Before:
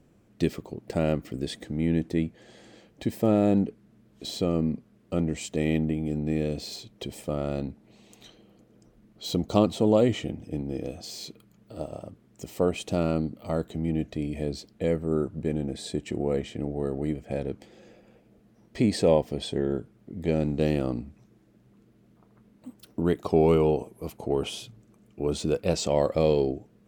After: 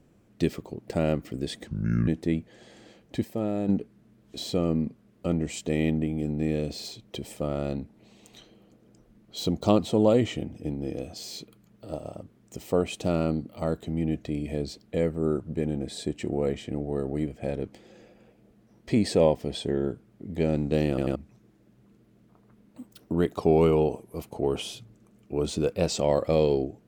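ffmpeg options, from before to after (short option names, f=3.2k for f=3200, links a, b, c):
-filter_complex "[0:a]asplit=8[a][b][c][d][e][f][g][h];[a]atrim=end=1.674[i];[b]atrim=start=1.67:end=1.95,asetpts=PTS-STARTPTS,asetrate=30429,aresample=44100[j];[c]atrim=start=1.946:end=3.122[k];[d]atrim=start=3.118:end=3.562,asetpts=PTS-STARTPTS,volume=-7dB[l];[e]atrim=start=3.558:end=20.852[m];[f]atrim=start=20.758:end=20.852[n];[g]atrim=start=20.758:end=20.852[o];[h]atrim=start=21.028[p];[i][j]acrossfade=d=0.004:c1=hsin:c2=hsin[q];[q][k]acrossfade=d=0.004:c1=hsin:c2=hsin[r];[r][l]acrossfade=d=0.004:c1=hsin:c2=hsin[s];[s][m]acrossfade=d=0.004:c1=hsin:c2=hsin[t];[t][n]acrossfade=d=0.004:c1=hsin:c2=hsin[u];[u][o]acrossfade=d=0.004:c1=hsin:c2=hsin[v];[v][p]acrossfade=d=0.004:c1=hsin:c2=hsin"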